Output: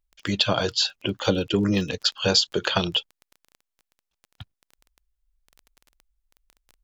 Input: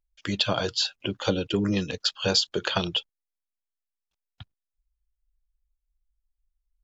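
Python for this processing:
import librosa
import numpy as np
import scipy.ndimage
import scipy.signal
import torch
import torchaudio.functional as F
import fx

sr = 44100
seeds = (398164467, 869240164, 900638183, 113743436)

y = fx.dmg_crackle(x, sr, seeds[0], per_s=16.0, level_db=-37.0)
y = y * 10.0 ** (3.0 / 20.0)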